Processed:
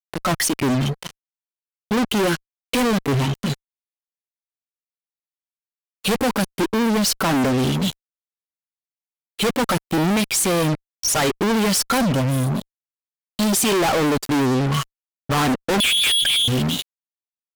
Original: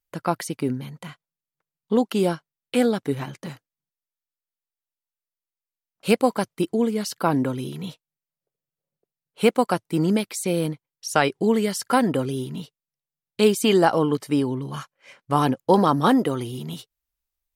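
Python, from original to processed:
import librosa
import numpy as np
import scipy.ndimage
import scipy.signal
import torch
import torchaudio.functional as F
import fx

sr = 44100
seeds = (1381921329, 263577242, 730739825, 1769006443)

y = fx.fixed_phaser(x, sr, hz=950.0, stages=4, at=(12.02, 13.53))
y = fx.freq_invert(y, sr, carrier_hz=3600, at=(15.8, 16.48))
y = fx.noise_reduce_blind(y, sr, reduce_db=13)
y = fx.fuzz(y, sr, gain_db=44.0, gate_db=-43.0)
y = F.gain(torch.from_numpy(y), -4.0).numpy()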